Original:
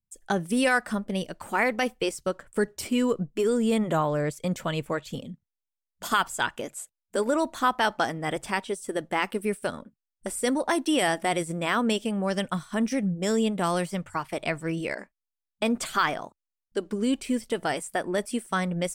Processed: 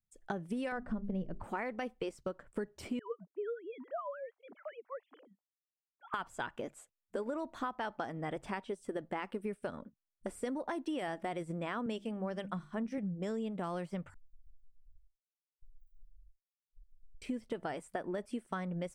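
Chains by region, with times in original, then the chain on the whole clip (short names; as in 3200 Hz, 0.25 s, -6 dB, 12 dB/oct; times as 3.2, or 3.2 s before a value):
0.72–1.44 tilt -4 dB/oct + notches 50/100/150/200/250/300/350/400 Hz
2.99–6.14 sine-wave speech + LFO band-pass sine 7 Hz 720–1700 Hz
11.86–12.98 notches 50/100/150/200/250/300/350 Hz + three-band expander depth 70%
14.14–17.22 minimum comb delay 5 ms + inverse Chebyshev band-stop 230–7700 Hz, stop band 80 dB + compressor 2.5:1, threshold -49 dBFS
whole clip: LPF 1500 Hz 6 dB/oct; compressor, threshold -31 dBFS; gain -3.5 dB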